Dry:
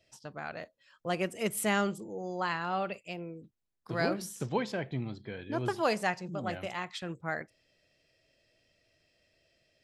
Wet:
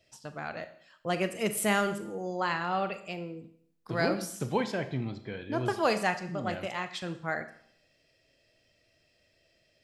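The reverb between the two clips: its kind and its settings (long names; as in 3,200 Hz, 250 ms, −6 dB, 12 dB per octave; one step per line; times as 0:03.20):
four-comb reverb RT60 0.64 s, combs from 27 ms, DRR 10 dB
level +2 dB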